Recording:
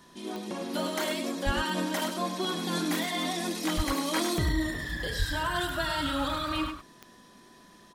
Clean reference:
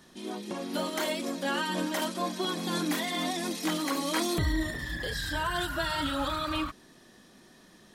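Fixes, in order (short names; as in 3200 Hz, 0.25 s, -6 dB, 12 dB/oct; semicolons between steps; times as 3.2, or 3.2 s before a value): de-click; notch 1000 Hz, Q 30; de-plosive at 1.45/3.76/5.18; inverse comb 0.102 s -8 dB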